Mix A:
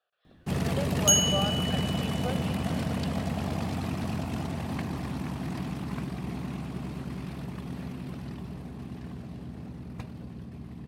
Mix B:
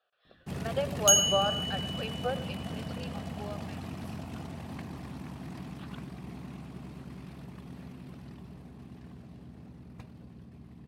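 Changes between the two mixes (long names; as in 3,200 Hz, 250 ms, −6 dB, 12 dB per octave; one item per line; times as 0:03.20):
speech +4.0 dB
first sound −8.0 dB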